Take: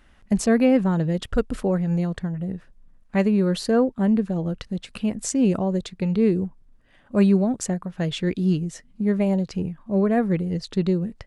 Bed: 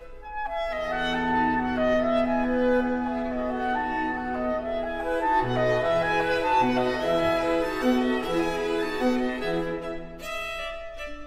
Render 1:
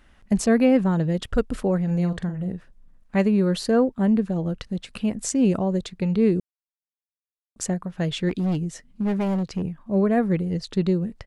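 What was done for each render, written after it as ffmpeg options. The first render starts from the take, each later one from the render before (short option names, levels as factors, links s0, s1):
-filter_complex "[0:a]asplit=3[s0][s1][s2];[s0]afade=t=out:st=1.87:d=0.02[s3];[s1]asplit=2[s4][s5];[s5]adelay=45,volume=0.355[s6];[s4][s6]amix=inputs=2:normalize=0,afade=t=in:st=1.87:d=0.02,afade=t=out:st=2.52:d=0.02[s7];[s2]afade=t=in:st=2.52:d=0.02[s8];[s3][s7][s8]amix=inputs=3:normalize=0,asettb=1/sr,asplit=3[s9][s10][s11];[s9]atrim=end=8.294[s12];[s10]atrim=start=8.29:end=9.63,asetpts=PTS-STARTPTS,afade=t=in:d=0.004:c=qsin,afade=t=out:st=1.336:d=0.004:c=qsin,asoftclip=type=hard:threshold=0.1[s13];[s11]atrim=start=9.626[s14];[s12][s13]acrossfade=d=0.004:c1=hsin:c2=qsin[s15];[s15][s14]acrossfade=d=0.004:c1=qsin:c2=hsin,asplit=3[s16][s17][s18];[s16]atrim=end=6.4,asetpts=PTS-STARTPTS,afade=t=out:st=6.396:d=0.004:c=hsin[s19];[s17]atrim=start=6.4:end=7.56,asetpts=PTS-STARTPTS,volume=0[s20];[s18]atrim=start=7.56,asetpts=PTS-STARTPTS,afade=t=in:d=0.004:c=hsin[s21];[s19][s20][s21]concat=n=3:v=0:a=1"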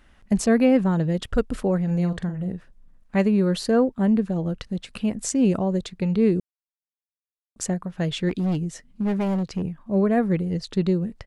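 -af anull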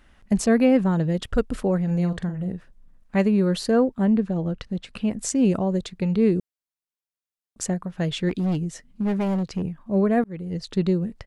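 -filter_complex "[0:a]asettb=1/sr,asplit=3[s0][s1][s2];[s0]atrim=end=4.044[s3];[s1]atrim=start=4.04:end=5.11,asetpts=PTS-STARTPTS,afade=t=in:d=0.004:c=qsin,afade=t=out:st=1.066:d=0.004:c=qsin,highshelf=f=8600:g=-12[s4];[s2]atrim=start=5.106[s5];[s3][s4]acrossfade=d=0.004:c1=hsin:c2=qsin[s6];[s6][s5]acrossfade=d=0.004:c1=qsin:c2=hsin,asplit=2[s7][s8];[s7]atrim=end=10.24,asetpts=PTS-STARTPTS,afade=t=out:st=10.236:d=0.004:c=hsin[s9];[s8]atrim=start=10.24,asetpts=PTS-STARTPTS,afade=t=in:d=0.6:c=qsin[s10];[s9][s10]concat=n=2:v=0:a=1"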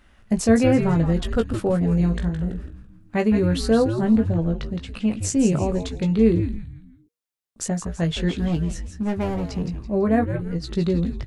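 -filter_complex "[0:a]asplit=2[s0][s1];[s1]adelay=18,volume=0.501[s2];[s0][s2]amix=inputs=2:normalize=0,asplit=5[s3][s4][s5][s6][s7];[s4]adelay=166,afreqshift=-120,volume=0.398[s8];[s5]adelay=332,afreqshift=-240,volume=0.14[s9];[s6]adelay=498,afreqshift=-360,volume=0.049[s10];[s7]adelay=664,afreqshift=-480,volume=0.017[s11];[s3][s8][s9][s10][s11]amix=inputs=5:normalize=0"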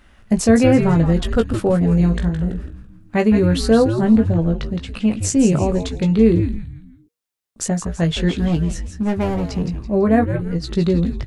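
-af "volume=1.68,alimiter=limit=0.708:level=0:latency=1"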